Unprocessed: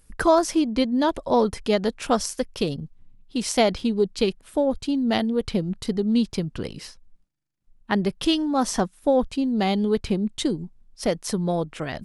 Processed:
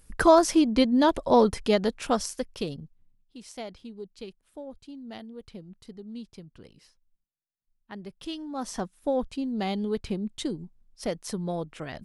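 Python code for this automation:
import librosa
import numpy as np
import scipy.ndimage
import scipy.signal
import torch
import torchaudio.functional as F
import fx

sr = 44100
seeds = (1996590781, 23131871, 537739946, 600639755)

y = fx.gain(x, sr, db=fx.line((1.44, 0.5), (2.8, -8.0), (3.38, -19.0), (7.92, -19.0), (8.99, -7.0)))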